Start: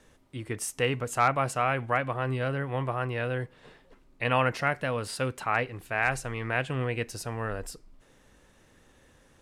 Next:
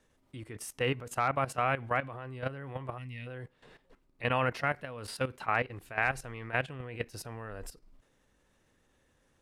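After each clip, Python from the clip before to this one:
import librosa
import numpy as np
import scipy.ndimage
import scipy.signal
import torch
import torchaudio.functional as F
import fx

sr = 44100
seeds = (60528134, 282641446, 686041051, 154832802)

y = fx.spec_box(x, sr, start_s=2.98, length_s=0.29, low_hz=290.0, high_hz=1800.0, gain_db=-19)
y = fx.dynamic_eq(y, sr, hz=7500.0, q=1.4, threshold_db=-54.0, ratio=4.0, max_db=-6)
y = fx.level_steps(y, sr, step_db=14)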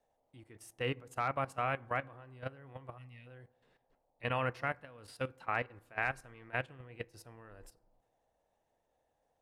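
y = fx.dmg_noise_band(x, sr, seeds[0], low_hz=450.0, high_hz=880.0, level_db=-65.0)
y = fx.rev_fdn(y, sr, rt60_s=1.1, lf_ratio=1.5, hf_ratio=0.3, size_ms=18.0, drr_db=16.0)
y = fx.upward_expand(y, sr, threshold_db=-49.0, expansion=1.5)
y = y * librosa.db_to_amplitude(-4.5)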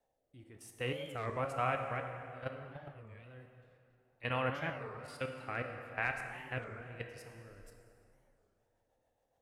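y = fx.rotary_switch(x, sr, hz=1.1, then_hz=7.0, switch_at_s=7.76)
y = fx.rev_plate(y, sr, seeds[1], rt60_s=2.7, hf_ratio=0.7, predelay_ms=0, drr_db=3.5)
y = fx.record_warp(y, sr, rpm=33.33, depth_cents=250.0)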